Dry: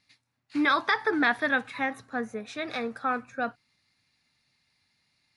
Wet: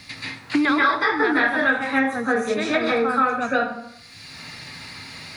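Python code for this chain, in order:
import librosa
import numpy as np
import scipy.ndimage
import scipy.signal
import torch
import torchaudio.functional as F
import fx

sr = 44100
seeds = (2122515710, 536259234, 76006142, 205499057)

y = fx.low_shelf(x, sr, hz=120.0, db=7.5)
y = fx.rev_plate(y, sr, seeds[0], rt60_s=0.51, hf_ratio=0.75, predelay_ms=120, drr_db=-9.0)
y = fx.band_squash(y, sr, depth_pct=100)
y = y * librosa.db_to_amplitude(-2.5)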